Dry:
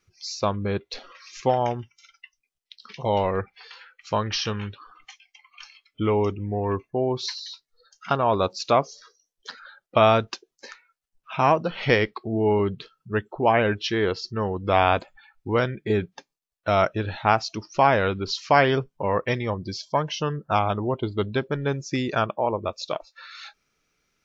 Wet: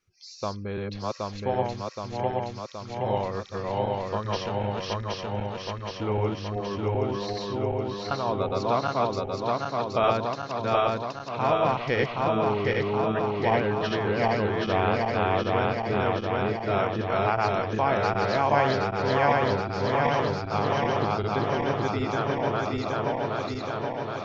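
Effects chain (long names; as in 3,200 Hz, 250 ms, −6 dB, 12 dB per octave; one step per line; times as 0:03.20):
feedback delay that plays each chunk backwards 386 ms, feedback 83%, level 0 dB
dynamic equaliser 6,500 Hz, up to −6 dB, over −42 dBFS, Q 0.79
level −7 dB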